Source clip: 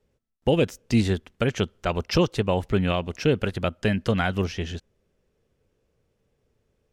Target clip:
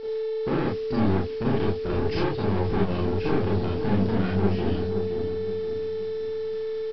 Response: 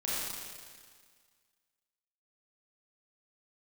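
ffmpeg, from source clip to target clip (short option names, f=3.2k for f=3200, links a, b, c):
-filter_complex "[0:a]lowpass=f=3.6k:p=1,lowshelf=f=480:t=q:w=3:g=9,aeval=exprs='val(0)+0.0355*sin(2*PI*440*n/s)':c=same,asplit=2[a][b];[b]acompressor=threshold=-21dB:ratio=4,volume=-2dB[c];[a][c]amix=inputs=2:normalize=0,equalizer=f=870:t=o:w=0.42:g=3.5,aeval=exprs='(tanh(7.08*val(0)+0.2)-tanh(0.2))/7.08':c=same,aresample=11025,acrusher=bits=6:mix=0:aa=0.000001,aresample=44100,asplit=2[d][e];[e]adelay=521,lowpass=f=1.1k:p=1,volume=-7dB,asplit=2[f][g];[g]adelay=521,lowpass=f=1.1k:p=1,volume=0.42,asplit=2[h][i];[i]adelay=521,lowpass=f=1.1k:p=1,volume=0.42,asplit=2[j][k];[k]adelay=521,lowpass=f=1.1k:p=1,volume=0.42,asplit=2[l][m];[m]adelay=521,lowpass=f=1.1k:p=1,volume=0.42[n];[d][f][h][j][l][n]amix=inputs=6:normalize=0[o];[1:a]atrim=start_sample=2205,atrim=end_sample=3969[p];[o][p]afir=irnorm=-1:irlink=0,volume=-7dB"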